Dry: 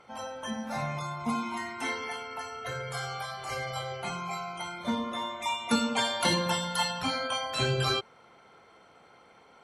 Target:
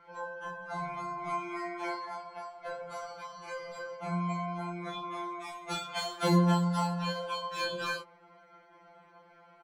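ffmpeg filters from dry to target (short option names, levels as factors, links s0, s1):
-filter_complex "[0:a]adynamicsmooth=sensitivity=3:basefreq=4300,asplit=2[s0][s1];[s1]adelay=22,volume=0.596[s2];[s0][s2]amix=inputs=2:normalize=0,afftfilt=real='re*2.83*eq(mod(b,8),0)':imag='im*2.83*eq(mod(b,8),0)':win_size=2048:overlap=0.75"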